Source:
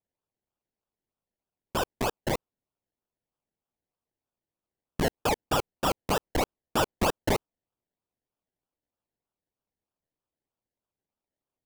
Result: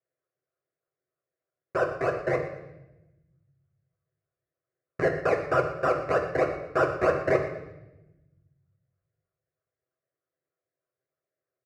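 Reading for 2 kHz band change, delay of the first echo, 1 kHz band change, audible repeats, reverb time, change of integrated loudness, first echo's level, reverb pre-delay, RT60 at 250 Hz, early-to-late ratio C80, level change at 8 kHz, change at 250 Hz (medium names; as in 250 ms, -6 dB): +4.0 dB, 118 ms, +0.5 dB, 1, 0.95 s, +2.5 dB, -14.5 dB, 8 ms, 1.5 s, 9.0 dB, under -15 dB, -1.0 dB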